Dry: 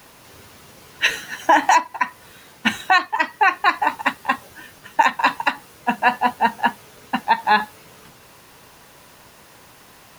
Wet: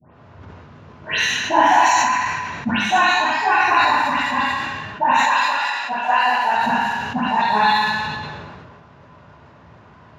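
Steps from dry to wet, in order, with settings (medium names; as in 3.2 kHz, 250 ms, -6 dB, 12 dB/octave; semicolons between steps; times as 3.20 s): 5.17–6.55 s: high-pass 570 Hz 12 dB/octave; level-controlled noise filter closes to 1.5 kHz, open at -14.5 dBFS; vibrato 4 Hz 32 cents; phase dispersion highs, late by 150 ms, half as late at 2.3 kHz; reverberation RT60 1.1 s, pre-delay 3 ms, DRR -10.5 dB; decay stretcher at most 28 dB/s; trim -10 dB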